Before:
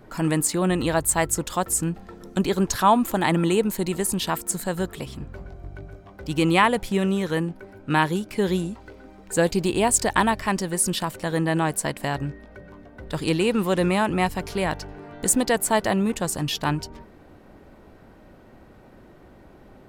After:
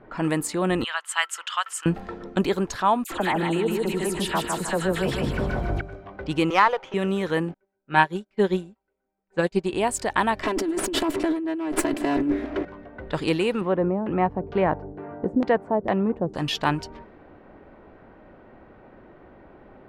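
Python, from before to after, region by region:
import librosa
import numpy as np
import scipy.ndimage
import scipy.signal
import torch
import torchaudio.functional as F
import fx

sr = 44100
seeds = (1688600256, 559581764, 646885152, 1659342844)

y = fx.chain(x, sr, fx.ladder_highpass(hz=1100.0, resonance_pct=45),
    fx.peak_eq(hz=3000.0, db=14.5, octaves=0.25), at=(0.84, 1.86))
y = fx.chain(y, sr, fx.dispersion(late='lows', ms=64.0, hz=1800.0),
    fx.echo_feedback(ms=154, feedback_pct=28, wet_db=-5.0),
    fx.env_flatten(amount_pct=50), at=(3.04, 5.81))
y = fx.chain(y, sr, fx.cabinet(low_hz=390.0, low_slope=24, high_hz=3300.0, hz=(500.0, 890.0, 1300.0, 3100.0), db=(4, 6, 8, 8)),
    fx.running_max(window=5), at=(6.5, 6.94))
y = fx.chain(y, sr, fx.lowpass(hz=10000.0, slope=12),
    fx.comb(ms=5.2, depth=0.52),
    fx.upward_expand(threshold_db=-40.0, expansion=2.5), at=(7.54, 9.72))
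y = fx.chain(y, sr, fx.lower_of_two(delay_ms=3.0),
    fx.peak_eq(hz=310.0, db=13.0, octaves=0.91),
    fx.over_compress(threshold_db=-25.0, ratio=-1.0), at=(10.43, 12.65))
y = fx.chain(y, sr, fx.highpass(hz=57.0, slope=12),
    fx.tilt_shelf(db=4.0, hz=1400.0),
    fx.filter_lfo_lowpass(shape='saw_down', hz=2.2, low_hz=310.0, high_hz=3600.0, q=0.81), at=(13.61, 16.35))
y = fx.rider(y, sr, range_db=10, speed_s=0.5)
y = fx.env_lowpass(y, sr, base_hz=2400.0, full_db=-17.5)
y = fx.bass_treble(y, sr, bass_db=-6, treble_db=-8)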